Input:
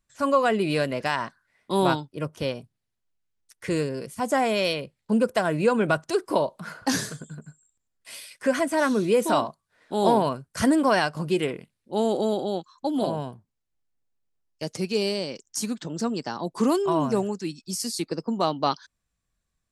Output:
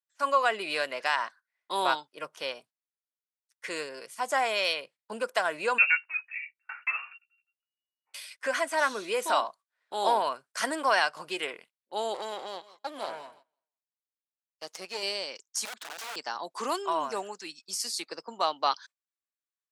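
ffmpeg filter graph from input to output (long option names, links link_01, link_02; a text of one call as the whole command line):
ffmpeg -i in.wav -filter_complex "[0:a]asettb=1/sr,asplit=3[link_01][link_02][link_03];[link_01]atrim=end=5.784[link_04];[link_02]atrim=start=5.78:end=8.14,asetpts=PTS-STARTPTS,afade=type=in:duration=0.004:curve=qsin,afade=type=out:start_time=2.356:duration=0.004:curve=qsin,asplit=2[link_05][link_06];[link_06]adelay=14,volume=-5dB[link_07];[link_05][link_07]amix=inputs=2:normalize=0,atrim=end_sample=104076,lowpass=frequency=2500:width_type=q:width=0.5098,lowpass=frequency=2500:width_type=q:width=0.6013,lowpass=frequency=2500:width_type=q:width=0.9,lowpass=frequency=2500:width_type=q:width=2.563,afreqshift=-2900,aeval=exprs='val(0)*pow(10,-26*if(lt(mod(1.1*n/s,1),2*abs(1.1)/1000),1-mod(1.1*n/s,1)/(2*abs(1.1)/1000),(mod(1.1*n/s,1)-2*abs(1.1)/1000)/(1-2*abs(1.1)/1000))/20)':channel_layout=same[link_08];[link_03]atrim=start=8.136[link_09];[link_04][link_08]acrossfade=duration=0.004:curve1=hsin:curve2=qsin[link_10];[link_10][link_09]acrossfade=duration=0.004:curve1=qsin:curve2=hsin,asettb=1/sr,asplit=3[link_11][link_12][link_13];[link_11]atrim=end=12.144[link_14];[link_12]atrim=start=12.14:end=15.03,asetpts=PTS-STARTPTS,afade=type=in:duration=0.004:curve=qsin,afade=type=out:start_time=2.886:duration=0.004:curve=qsin,aeval=exprs='if(lt(val(0),0),0.251*val(0),val(0))':channel_layout=same,aecho=1:1:165|330|495:0.126|0.039|0.0121,atrim=end_sample=127449[link_15];[link_13]atrim=start=15.026[link_16];[link_14][link_15]acrossfade=duration=0.004:curve1=hsin:curve2=qsin[link_17];[link_17][link_16]acrossfade=duration=0.004:curve1=qsin:curve2=hsin,asettb=1/sr,asplit=3[link_18][link_19][link_20];[link_18]atrim=end=15.654[link_21];[link_19]atrim=start=15.65:end=16.16,asetpts=PTS-STARTPTS,afade=type=in:duration=0.004:curve=qsin,afade=type=out:start_time=0.506:duration=0.004:curve=qsin,bandreject=frequency=60:width_type=h:width=6,bandreject=frequency=120:width_type=h:width=6,bandreject=frequency=180:width_type=h:width=6,acompressor=threshold=-33dB:ratio=2:attack=3.2:release=140:knee=1:detection=peak,aeval=exprs='(mod(39.8*val(0)+1,2)-1)/39.8':channel_layout=same[link_22];[link_20]atrim=start=16.156[link_23];[link_21][link_22]acrossfade=duration=0.004:curve1=hsin:curve2=qsin[link_24];[link_24][link_23]acrossfade=duration=0.004:curve1=qsin:curve2=hsin,agate=range=-17dB:threshold=-46dB:ratio=16:detection=peak,highpass=850,highshelf=frequency=9400:gain=-8.5,volume=1dB" out.wav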